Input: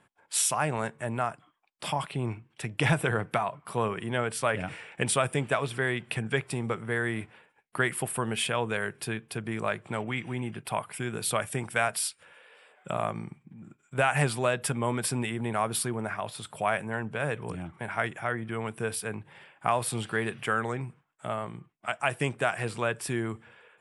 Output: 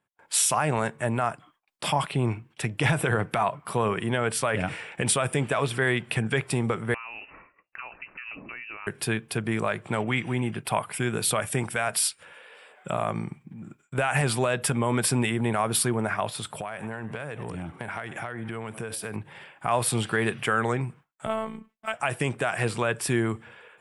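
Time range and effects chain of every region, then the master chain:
6.94–8.87 s: compression 5:1, threshold -43 dBFS + frequency inversion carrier 2.8 kHz
16.48–19.16 s: frequency-shifting echo 96 ms, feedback 54%, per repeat +99 Hz, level -23 dB + compression 16:1, threshold -35 dBFS
21.26–21.94 s: median filter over 3 samples + robot voice 220 Hz
whole clip: peak limiter -18.5 dBFS; gate with hold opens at -54 dBFS; trim +6 dB

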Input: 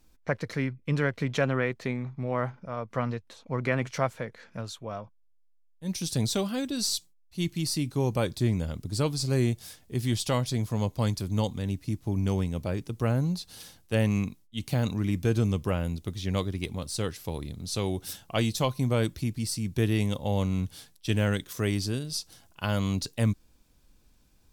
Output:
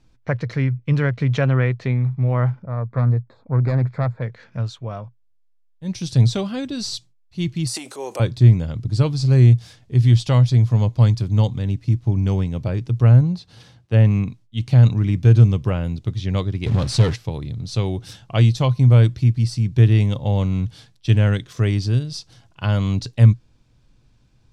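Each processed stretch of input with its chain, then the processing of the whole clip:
2.62–4.22 s: self-modulated delay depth 0.33 ms + boxcar filter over 15 samples
7.67–8.20 s: resonant high shelf 6.3 kHz +9.5 dB, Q 1.5 + transient shaper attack -3 dB, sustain +11 dB + high-pass 410 Hz 24 dB/octave
13.21–14.28 s: high-pass 50 Hz + treble shelf 3.4 kHz -7.5 dB
16.66–17.16 s: send-on-delta sampling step -48 dBFS + waveshaping leveller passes 3
whole clip: low-pass 5.2 kHz 12 dB/octave; peaking EQ 120 Hz +14.5 dB 0.48 oct; trim +3.5 dB

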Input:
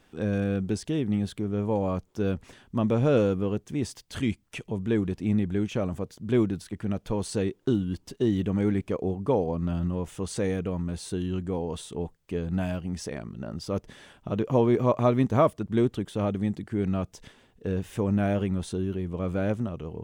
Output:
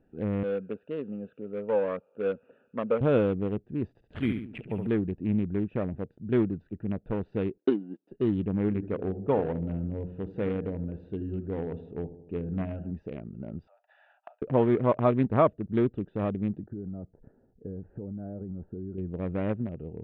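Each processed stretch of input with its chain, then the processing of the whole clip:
0.43–3.01 s: cabinet simulation 310–3100 Hz, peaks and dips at 340 Hz -10 dB, 500 Hz +9 dB, 760 Hz -6 dB, 1.3 kHz +8 dB, 2 kHz -8 dB, 2.8 kHz +5 dB + feedback echo behind a high-pass 96 ms, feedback 80%, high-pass 2.2 kHz, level -14.5 dB
3.88–4.87 s: treble shelf 6.4 kHz -5 dB + flutter echo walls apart 11.9 m, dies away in 0.7 s + careless resampling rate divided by 4×, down filtered, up zero stuff
7.58–8.12 s: companding laws mixed up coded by A + high-pass 240 Hz 24 dB/octave + transient shaper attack +6 dB, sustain -2 dB
8.68–12.91 s: hum notches 60/120/180/240/300/360 Hz + bucket-brigade echo 78 ms, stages 1024, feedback 61%, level -12.5 dB
13.67–14.42 s: compressor with a negative ratio -33 dBFS, ratio -0.5 + steep high-pass 650 Hz 72 dB/octave
16.60–18.98 s: low-pass 1.4 kHz 24 dB/octave + compression 12:1, threshold -30 dBFS
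whole clip: local Wiener filter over 41 samples; low-pass 3 kHz 24 dB/octave; bass shelf 140 Hz -4.5 dB

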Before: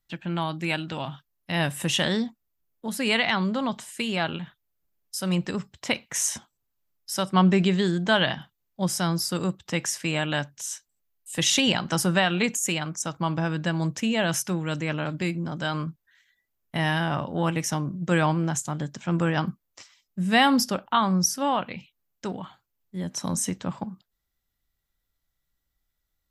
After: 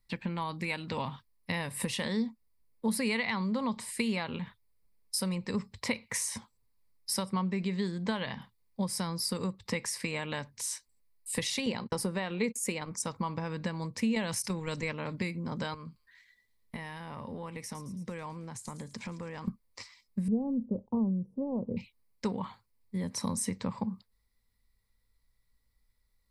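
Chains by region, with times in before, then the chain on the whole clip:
11.66–12.91 s: gate -32 dBFS, range -42 dB + peaking EQ 410 Hz +6.5 dB 1.4 oct
14.15–14.92 s: gate -29 dBFS, range -13 dB + peaking EQ 6.6 kHz +6 dB 1.5 oct + level flattener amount 70%
15.74–19.48 s: compression, threshold -39 dBFS + feedback echo behind a high-pass 110 ms, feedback 59%, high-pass 5 kHz, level -9 dB
20.28–21.77 s: waveshaping leveller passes 1 + inverse Chebyshev low-pass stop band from 1.7 kHz, stop band 60 dB + tape noise reduction on one side only encoder only
whole clip: bass shelf 130 Hz +6 dB; compression 10:1, threshold -30 dBFS; rippled EQ curve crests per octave 0.92, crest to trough 10 dB

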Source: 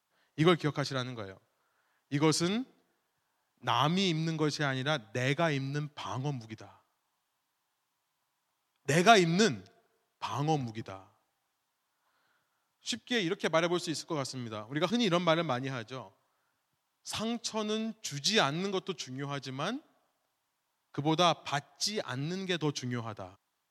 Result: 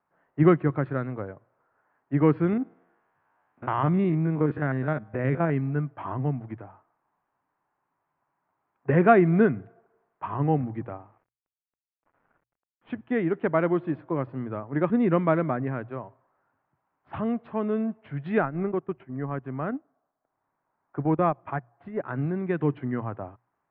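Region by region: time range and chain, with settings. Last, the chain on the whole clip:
2.53–5.50 s: spectrogram pixelated in time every 50 ms + tape noise reduction on one side only encoder only
10.89–13.01 s: de-hum 112.4 Hz, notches 3 + companded quantiser 6-bit + decimation joined by straight lines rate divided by 3×
18.38–22.04 s: transient shaper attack -3 dB, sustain -10 dB + low-pass 2.4 kHz
whole clip: Bessel low-pass 1.2 kHz, order 8; hum notches 60/120 Hz; dynamic bell 780 Hz, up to -4 dB, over -41 dBFS, Q 1.4; trim +8 dB

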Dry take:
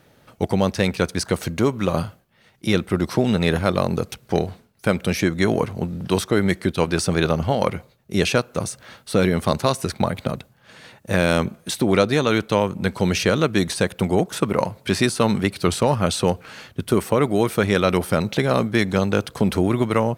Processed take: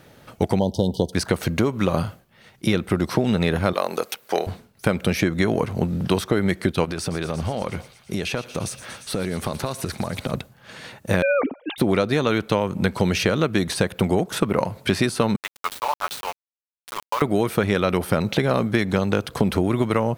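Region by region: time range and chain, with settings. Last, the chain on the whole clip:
0.59–1.13 s: brick-wall FIR band-stop 1–2.9 kHz + peaking EQ 8.4 kHz -7.5 dB 2.3 oct
3.73–4.47 s: high-pass 510 Hz + treble shelf 12 kHz +8.5 dB
6.85–10.34 s: compression 10:1, threshold -26 dBFS + feedback echo behind a high-pass 116 ms, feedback 77%, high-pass 2.3 kHz, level -13 dB
11.22–11.78 s: formants replaced by sine waves + peaking EQ 1.7 kHz -6 dB 0.35 oct
15.36–17.22 s: ladder high-pass 820 Hz, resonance 45% + comb 7 ms, depth 47% + small samples zeroed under -30.5 dBFS
whole clip: compression, threshold -21 dBFS; dynamic bell 7.3 kHz, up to -5 dB, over -44 dBFS, Q 0.82; trim +5 dB

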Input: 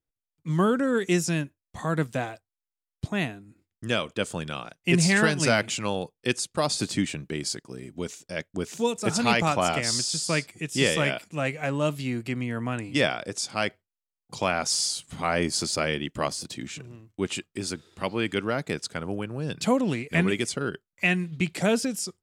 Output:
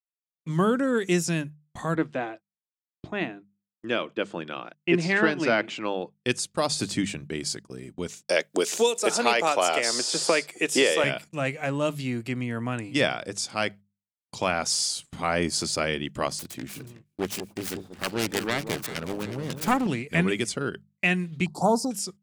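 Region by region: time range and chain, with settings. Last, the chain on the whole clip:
1.95–6.16 s: band-pass 230–3000 Hz + peaking EQ 330 Hz +8 dB 0.23 oct
8.27–11.04 s: resonant high-pass 440 Hz, resonance Q 1.5 + three bands compressed up and down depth 100%
16.39–19.87 s: self-modulated delay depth 0.65 ms + echo whose repeats swap between lows and highs 184 ms, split 950 Hz, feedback 66%, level -8.5 dB
21.46–21.91 s: elliptic band-stop 940–4500 Hz, stop band 50 dB + high-order bell 1.1 kHz +14.5 dB 1.3 oct + tape noise reduction on one side only decoder only
whole clip: gate -42 dBFS, range -37 dB; hum notches 50/100/150/200 Hz

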